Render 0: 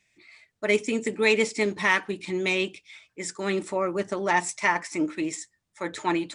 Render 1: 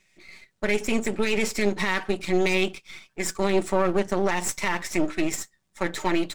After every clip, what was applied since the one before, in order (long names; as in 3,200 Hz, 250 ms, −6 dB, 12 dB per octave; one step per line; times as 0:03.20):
gain on one half-wave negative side −12 dB
brickwall limiter −19.5 dBFS, peak gain reduction 11 dB
comb filter 5.3 ms, depth 38%
level +7 dB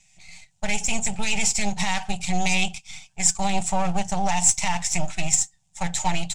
drawn EQ curve 170 Hz 0 dB, 300 Hz −29 dB, 490 Hz −21 dB, 790 Hz +2 dB, 1,100 Hz −14 dB, 1,800 Hz −13 dB, 2,700 Hz −3 dB, 4,200 Hz −5 dB, 7,400 Hz +7 dB, 14,000 Hz −16 dB
level +7.5 dB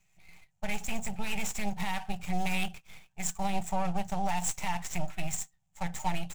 running median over 9 samples
level −7 dB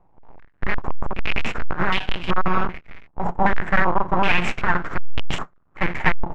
each half-wave held at its own peak
low-pass on a step sequencer 2.6 Hz 880–3,000 Hz
level +7.5 dB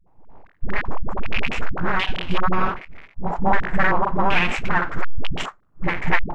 all-pass dispersion highs, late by 72 ms, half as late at 350 Hz